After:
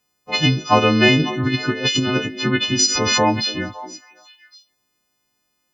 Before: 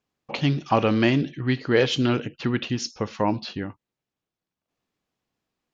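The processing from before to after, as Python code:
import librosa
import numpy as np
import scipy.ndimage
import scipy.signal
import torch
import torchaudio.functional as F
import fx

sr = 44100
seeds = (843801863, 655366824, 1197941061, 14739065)

p1 = fx.freq_snap(x, sr, grid_st=3)
p2 = fx.over_compress(p1, sr, threshold_db=-23.0, ratio=-0.5, at=(1.18, 2.25), fade=0.02)
p3 = p2 + fx.echo_stepped(p2, sr, ms=276, hz=330.0, octaves=1.4, feedback_pct=70, wet_db=-11.0, dry=0)
p4 = fx.pre_swell(p3, sr, db_per_s=25.0, at=(2.79, 3.47))
y = F.gain(torch.from_numpy(p4), 5.0).numpy()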